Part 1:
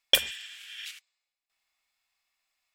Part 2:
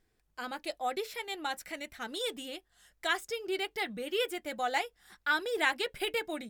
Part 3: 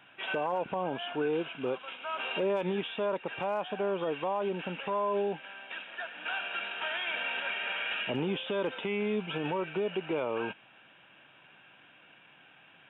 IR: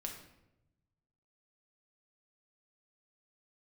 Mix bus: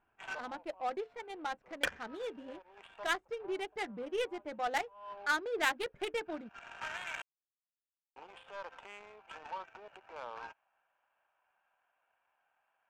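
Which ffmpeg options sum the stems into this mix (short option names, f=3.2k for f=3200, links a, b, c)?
-filter_complex "[0:a]agate=range=-7dB:threshold=-35dB:ratio=16:detection=peak,lowpass=f=1.6k:t=q:w=3.2,adelay=1700,volume=-6.5dB[a];[1:a]lowshelf=f=89:g=-11,volume=-2dB,asplit=2[b][c];[2:a]highpass=f=790:w=0.5412,highpass=f=790:w=1.3066,volume=-2.5dB,asplit=3[d][e][f];[d]atrim=end=7.22,asetpts=PTS-STARTPTS,afade=t=out:st=7.216:d=0.004:c=hsin[g];[e]atrim=start=7.22:end=8.16,asetpts=PTS-STARTPTS,volume=0[h];[f]atrim=start=8.16,asetpts=PTS-STARTPTS,afade=t=in:d=0.004:c=hsin[i];[g][h][i]concat=n=3:v=0:a=1[j];[c]apad=whole_len=568576[k];[j][k]sidechaincompress=threshold=-51dB:ratio=10:attack=22:release=277[l];[a][b][l]amix=inputs=3:normalize=0,adynamicsmooth=sensitivity=4.5:basefreq=560"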